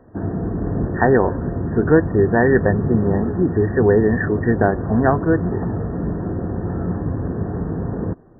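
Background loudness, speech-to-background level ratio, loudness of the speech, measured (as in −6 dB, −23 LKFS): −24.5 LKFS, 6.0 dB, −18.5 LKFS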